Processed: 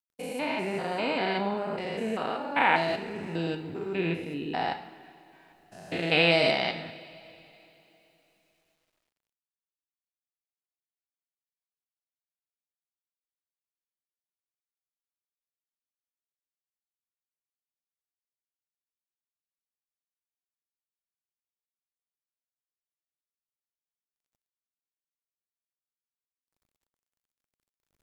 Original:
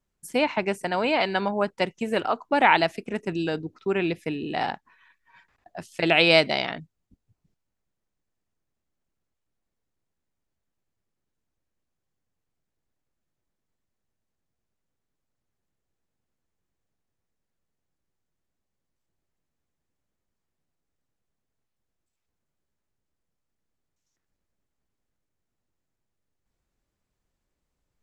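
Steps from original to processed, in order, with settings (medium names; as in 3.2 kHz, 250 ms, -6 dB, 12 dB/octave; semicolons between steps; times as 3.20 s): spectrogram pixelated in time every 200 ms; two-slope reverb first 0.65 s, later 3.4 s, from -16 dB, DRR 5.5 dB; word length cut 12-bit, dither none; trim -1.5 dB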